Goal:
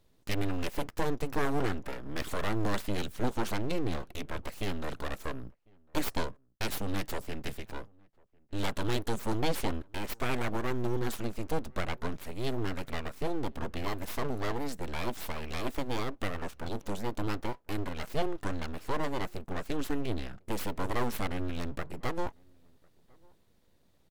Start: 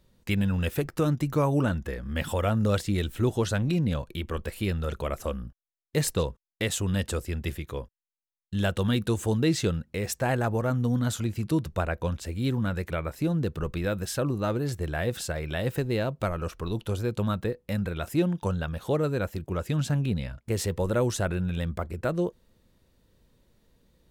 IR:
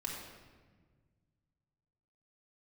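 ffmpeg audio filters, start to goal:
-filter_complex "[0:a]aeval=exprs='abs(val(0))':c=same,asplit=2[a][b];[b]adelay=1050,volume=-29dB,highshelf=f=4k:g=-23.6[c];[a][c]amix=inputs=2:normalize=0,volume=-2.5dB"

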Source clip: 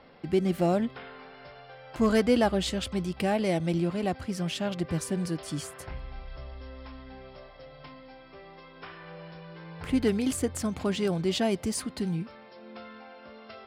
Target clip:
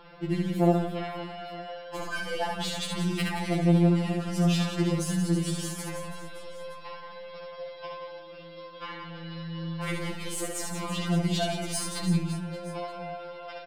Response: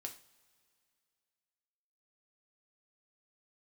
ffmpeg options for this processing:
-filter_complex "[0:a]acompressor=threshold=-32dB:ratio=6,aeval=exprs='0.1*(cos(1*acos(clip(val(0)/0.1,-1,1)))-cos(1*PI/2))+0.0158*(cos(3*acos(clip(val(0)/0.1,-1,1)))-cos(3*PI/2))+0.00282*(cos(5*acos(clip(val(0)/0.1,-1,1)))-cos(5*PI/2))+0.00158*(cos(6*acos(clip(val(0)/0.1,-1,1)))-cos(6*PI/2))+0.00224*(cos(7*acos(clip(val(0)/0.1,-1,1)))-cos(7*PI/2))':c=same,aecho=1:1:70|175|332.5|568.8|923.1:0.631|0.398|0.251|0.158|0.1,asplit=2[a][b];[1:a]atrim=start_sample=2205[c];[b][c]afir=irnorm=-1:irlink=0,volume=5.5dB[d];[a][d]amix=inputs=2:normalize=0,afftfilt=real='re*2.83*eq(mod(b,8),0)':imag='im*2.83*eq(mod(b,8),0)':win_size=2048:overlap=0.75,volume=6dB"

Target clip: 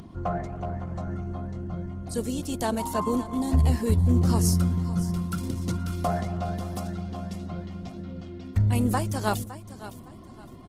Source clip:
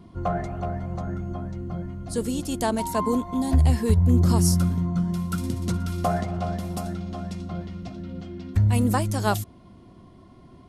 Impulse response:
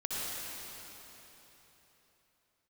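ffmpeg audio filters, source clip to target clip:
-af "acompressor=mode=upward:threshold=-35dB:ratio=2.5,aecho=1:1:562|1124|1686:0.178|0.0533|0.016,volume=-2.5dB" -ar 48000 -c:a libopus -b:a 16k

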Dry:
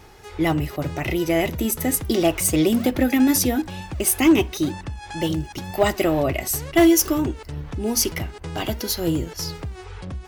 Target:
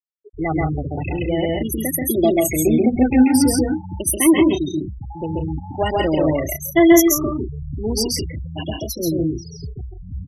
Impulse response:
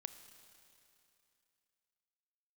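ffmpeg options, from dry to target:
-af "afftfilt=real='re*pow(10,8/40*sin(2*PI*(1.2*log(max(b,1)*sr/1024/100)/log(2)-(0.43)*(pts-256)/sr)))':imag='im*pow(10,8/40*sin(2*PI*(1.2*log(max(b,1)*sr/1024/100)/log(2)-(0.43)*(pts-256)/sr)))':win_size=1024:overlap=0.75,afftfilt=real='re*gte(hypot(re,im),0.141)':imag='im*gte(hypot(re,im),0.141)':win_size=1024:overlap=0.75,aecho=1:1:134.1|166.2:0.891|0.447,volume=-1dB"

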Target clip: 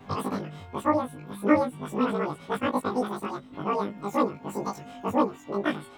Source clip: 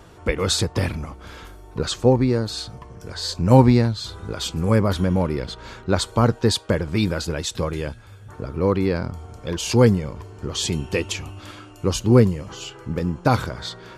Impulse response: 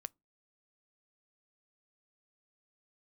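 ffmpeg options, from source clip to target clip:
-filter_complex "[0:a]afftfilt=real='re':imag='-im':win_size=4096:overlap=0.75,asetrate=103194,aresample=44100,asplit=2[a][b];[b]acompressor=threshold=-37dB:ratio=6,volume=0dB[c];[a][c]amix=inputs=2:normalize=0,lowpass=f=1.3k:p=1,volume=-2.5dB"

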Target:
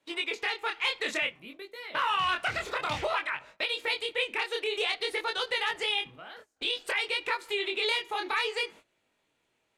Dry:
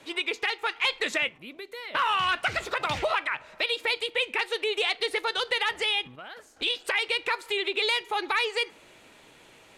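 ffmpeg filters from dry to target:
-af "agate=range=-19dB:threshold=-45dB:ratio=16:detection=peak,flanger=delay=20:depth=7.5:speed=0.55"

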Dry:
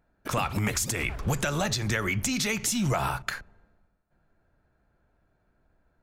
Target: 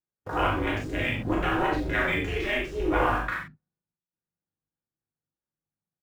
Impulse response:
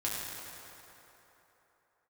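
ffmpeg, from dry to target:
-filter_complex "[0:a]lowpass=3.4k,afwtdn=0.02,agate=range=-13dB:threshold=-47dB:ratio=16:detection=peak,asplit=2[a][b];[b]aeval=exprs='val(0)*gte(abs(val(0)),0.0126)':c=same,volume=-6.5dB[c];[a][c]amix=inputs=2:normalize=0,aeval=exprs='val(0)*sin(2*PI*180*n/s)':c=same,acrossover=split=360[d][e];[d]asoftclip=type=tanh:threshold=-31dB[f];[f][e]amix=inputs=2:normalize=0,asplit=2[g][h];[h]adelay=40,volume=-4.5dB[i];[g][i]amix=inputs=2:normalize=0[j];[1:a]atrim=start_sample=2205,atrim=end_sample=4410[k];[j][k]afir=irnorm=-1:irlink=0"

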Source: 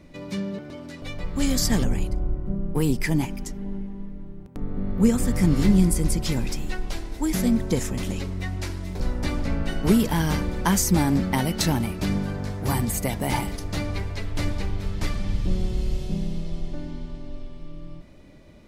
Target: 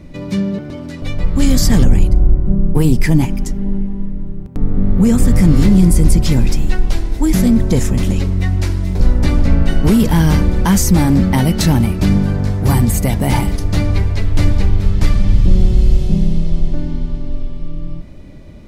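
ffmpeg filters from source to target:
-af "apsyclip=17dB,lowshelf=f=240:g=9.5,volume=-10.5dB"

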